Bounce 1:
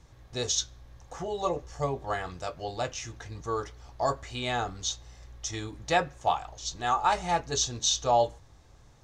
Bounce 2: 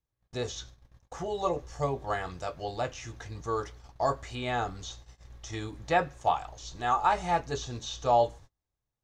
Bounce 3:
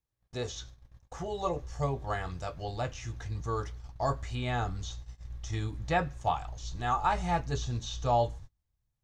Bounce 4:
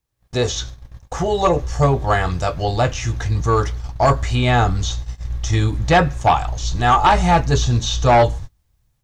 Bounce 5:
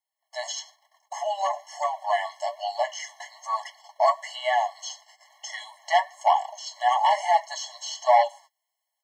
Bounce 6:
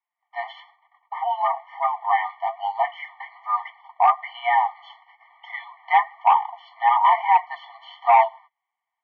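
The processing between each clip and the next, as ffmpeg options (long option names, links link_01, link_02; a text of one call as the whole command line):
ffmpeg -i in.wav -filter_complex "[0:a]acrossover=split=2600[link_01][link_02];[link_02]acompressor=threshold=-43dB:ratio=4:attack=1:release=60[link_03];[link_01][link_03]amix=inputs=2:normalize=0,agate=range=-32dB:threshold=-47dB:ratio=16:detection=peak" out.wav
ffmpeg -i in.wav -af "asubboost=boost=3:cutoff=210,volume=-2dB" out.wav
ffmpeg -i in.wav -af "dynaudnorm=framelen=150:gausssize=3:maxgain=8dB,aeval=exprs='0.447*sin(PI/2*1.78*val(0)/0.447)':channel_layout=same" out.wav
ffmpeg -i in.wav -af "flanger=delay=2.2:depth=6.8:regen=48:speed=1.1:shape=triangular,afftfilt=real='re*eq(mod(floor(b*sr/1024/560),2),1)':imag='im*eq(mod(floor(b*sr/1024/560),2),1)':win_size=1024:overlap=0.75" out.wav
ffmpeg -i in.wav -af "asoftclip=type=hard:threshold=-13dB,highpass=frequency=550:width_type=q:width=0.5412,highpass=frequency=550:width_type=q:width=1.307,lowpass=frequency=2600:width_type=q:width=0.5176,lowpass=frequency=2600:width_type=q:width=0.7071,lowpass=frequency=2600:width_type=q:width=1.932,afreqshift=85,volume=4.5dB" out.wav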